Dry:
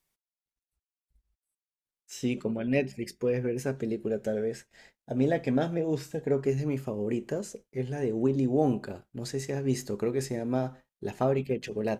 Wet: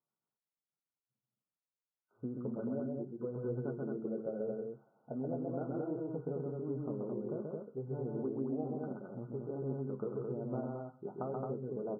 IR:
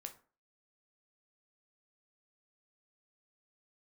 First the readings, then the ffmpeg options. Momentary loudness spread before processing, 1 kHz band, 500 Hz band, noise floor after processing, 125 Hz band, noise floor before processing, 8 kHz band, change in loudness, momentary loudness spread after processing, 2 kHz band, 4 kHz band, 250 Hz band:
9 LU, -10.0 dB, -9.0 dB, under -85 dBFS, -9.0 dB, under -85 dBFS, under -35 dB, -9.5 dB, 5 LU, -20.5 dB, under -35 dB, -9.0 dB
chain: -af "flanger=delay=8.7:depth=4:regen=-39:speed=0.87:shape=sinusoidal,acompressor=threshold=-33dB:ratio=6,aecho=1:1:131.2|218.7:0.708|0.708,afftfilt=real='re*between(b*sr/4096,110,1500)':imag='im*between(b*sr/4096,110,1500)':win_size=4096:overlap=0.75,volume=-3.5dB"

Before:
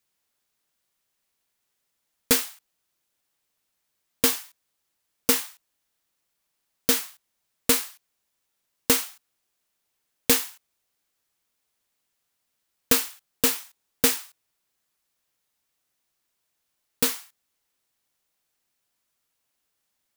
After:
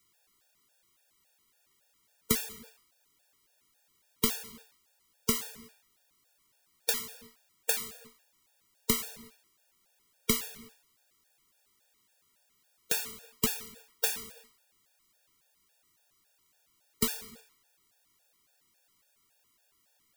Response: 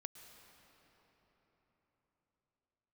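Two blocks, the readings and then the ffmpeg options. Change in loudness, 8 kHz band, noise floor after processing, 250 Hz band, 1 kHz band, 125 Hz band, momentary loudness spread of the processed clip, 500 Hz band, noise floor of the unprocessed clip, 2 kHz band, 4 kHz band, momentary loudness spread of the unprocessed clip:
-8.5 dB, -8.0 dB, -72 dBFS, -6.5 dB, -7.5 dB, -1.0 dB, 18 LU, -9.0 dB, -78 dBFS, -8.0 dB, -8.0 dB, 15 LU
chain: -filter_complex "[0:a]acompressor=threshold=-37dB:ratio=3,afreqshift=-25,asplit=2[a][b];[1:a]atrim=start_sample=2205,afade=t=out:st=0.42:d=0.01,atrim=end_sample=18963[c];[b][c]afir=irnorm=-1:irlink=0,volume=0dB[d];[a][d]amix=inputs=2:normalize=0,afftfilt=real='re*gt(sin(2*PI*3.6*pts/sr)*(1-2*mod(floor(b*sr/1024/470),2)),0)':imag='im*gt(sin(2*PI*3.6*pts/sr)*(1-2*mod(floor(b*sr/1024/470),2)),0)':win_size=1024:overlap=0.75,volume=6dB"

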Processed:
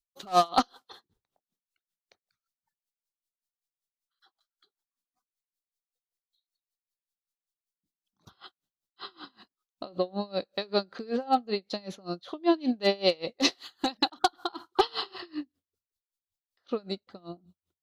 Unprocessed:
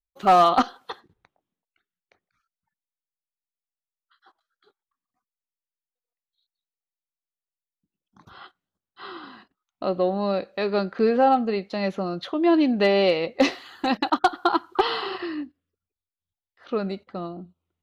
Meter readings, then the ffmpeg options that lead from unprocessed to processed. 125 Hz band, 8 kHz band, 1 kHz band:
-8.5 dB, n/a, -7.5 dB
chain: -af "highshelf=f=3.1k:t=q:w=1.5:g=7.5,aeval=exprs='val(0)*pow(10,-27*(0.5-0.5*cos(2*PI*5.2*n/s))/20)':c=same,volume=-1.5dB"

